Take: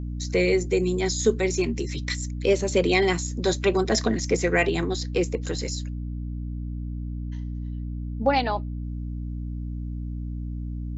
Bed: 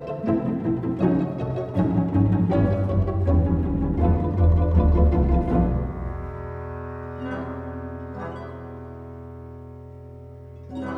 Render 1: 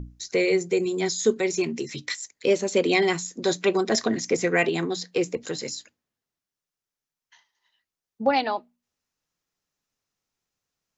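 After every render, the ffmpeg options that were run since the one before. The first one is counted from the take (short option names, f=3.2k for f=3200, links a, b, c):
-af "bandreject=f=60:t=h:w=6,bandreject=f=120:t=h:w=6,bandreject=f=180:t=h:w=6,bandreject=f=240:t=h:w=6,bandreject=f=300:t=h:w=6"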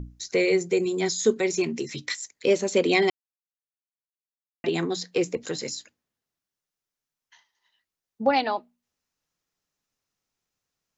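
-filter_complex "[0:a]asplit=3[a][b][c];[a]atrim=end=3.1,asetpts=PTS-STARTPTS,afade=t=out:st=3.096:d=0.004:c=hsin[d];[b]atrim=start=3.1:end=4.64,asetpts=PTS-STARTPTS,volume=0[e];[c]atrim=start=4.64,asetpts=PTS-STARTPTS,afade=t=in:d=0.004:c=hsin[f];[d][e][f]concat=n=3:v=0:a=1"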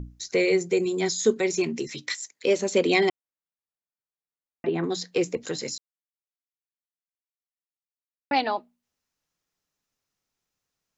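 -filter_complex "[0:a]asettb=1/sr,asplit=3[a][b][c];[a]atrim=end=1.874[d];[b]atrim=start=1.87:end=2.59,asetpts=PTS-STARTPTS,afade=t=in:d=0.004:c=qsin,afade=t=out:st=0.716:d=0.004:c=qsin,highpass=f=230:p=1[e];[c]atrim=start=2.586[f];[d][e]acrossfade=d=0.004:c1=hsin:c2=qsin[g];[g][f]acrossfade=d=0.004:c1=qsin:c2=hsin,asettb=1/sr,asplit=3[h][i][j];[h]atrim=end=3.094[k];[i]atrim=start=3.09:end=4.84,asetpts=PTS-STARTPTS,afade=t=in:d=0.004:c=qsin,afade=t=out:st=1.746:d=0.004:c=qsin,lowpass=1.7k[l];[j]atrim=start=4.836[m];[k][l]acrossfade=d=0.004:c1=hsin:c2=qsin[n];[n][m]acrossfade=d=0.004:c1=qsin:c2=hsin,asplit=3[o][p][q];[o]atrim=end=5.78,asetpts=PTS-STARTPTS,afade=t=out:st=5.776:d=0.004:c=hsin[r];[p]atrim=start=5.78:end=8.31,asetpts=PTS-STARTPTS,volume=0[s];[q]atrim=start=8.31,asetpts=PTS-STARTPTS,afade=t=in:d=0.004:c=hsin[t];[r][s][t]concat=n=3:v=0:a=1"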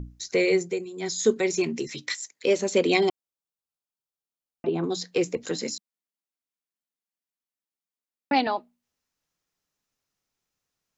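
-filter_complex "[0:a]asettb=1/sr,asplit=3[a][b][c];[a]atrim=end=2.974[d];[b]atrim=start=2.97:end=5,asetpts=PTS-STARTPTS,afade=t=in:d=0.004:c=qsin,afade=t=out:st=2.026:d=0.004:c=qsin,equalizer=f=1.9k:t=o:w=0.45:g=-14[e];[c]atrim=start=4.996[f];[d][e]acrossfade=d=0.004:c1=hsin:c2=qsin[g];[g][f]acrossfade=d=0.004:c1=qsin:c2=hsin,asettb=1/sr,asplit=3[h][i][j];[h]atrim=end=5.504[k];[i]atrim=start=5.5:end=8.47,asetpts=PTS-STARTPTS,afade=t=in:d=0.004:c=qsin,afade=t=out:st=2.966:d=0.004:c=qsin,lowshelf=f=140:t=q:w=3:g=-13[l];[j]atrim=start=8.466[m];[k][l]acrossfade=d=0.004:c1=hsin:c2=qsin[n];[n][m]acrossfade=d=0.004:c1=qsin:c2=hsin,asplit=3[o][p][q];[o]atrim=end=0.85,asetpts=PTS-STARTPTS,afade=t=out:st=0.58:d=0.27:silence=0.237137[r];[p]atrim=start=0.85:end=0.94,asetpts=PTS-STARTPTS,volume=-12.5dB[s];[q]atrim=start=0.94,asetpts=PTS-STARTPTS,afade=t=in:d=0.27:silence=0.237137[t];[r][s][t]concat=n=3:v=0:a=1"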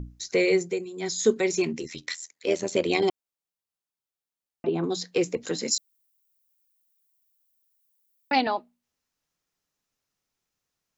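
-filter_complex "[0:a]asettb=1/sr,asplit=3[a][b][c];[a]atrim=end=1.734[d];[b]atrim=start=1.73:end=3.03,asetpts=PTS-STARTPTS,afade=t=in:d=0.004:c=qsin,afade=t=out:st=1.296:d=0.004:c=qsin,tremolo=f=82:d=0.667[e];[c]atrim=start=3.026[f];[d][e]acrossfade=d=0.004:c1=hsin:c2=qsin[g];[g][f]acrossfade=d=0.004:c1=qsin:c2=hsin,asplit=3[h][i][j];[h]afade=t=out:st=5.7:d=0.02[k];[i]aemphasis=mode=production:type=riaa,afade=t=in:st=5.7:d=0.02,afade=t=out:st=8.35:d=0.02[l];[j]afade=t=in:st=8.35:d=0.02[m];[k][l][m]amix=inputs=3:normalize=0"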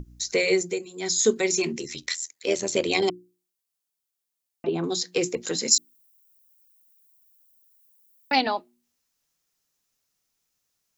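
-af "highshelf=f=4.2k:g=10,bandreject=f=60:t=h:w=6,bandreject=f=120:t=h:w=6,bandreject=f=180:t=h:w=6,bandreject=f=240:t=h:w=6,bandreject=f=300:t=h:w=6,bandreject=f=360:t=h:w=6"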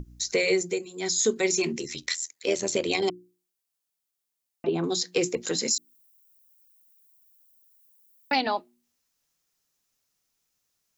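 -af "alimiter=limit=-13.5dB:level=0:latency=1:release=170"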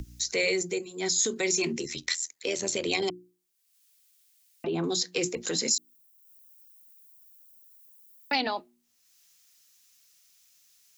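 -filter_complex "[0:a]acrossover=split=100|1800[a][b][c];[b]alimiter=limit=-23dB:level=0:latency=1:release=31[d];[c]acompressor=mode=upward:threshold=-48dB:ratio=2.5[e];[a][d][e]amix=inputs=3:normalize=0"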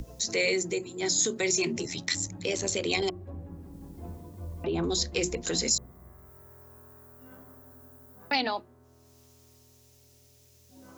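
-filter_complex "[1:a]volume=-22dB[a];[0:a][a]amix=inputs=2:normalize=0"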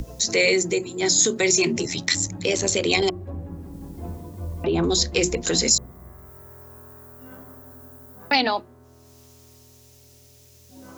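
-af "volume=7.5dB"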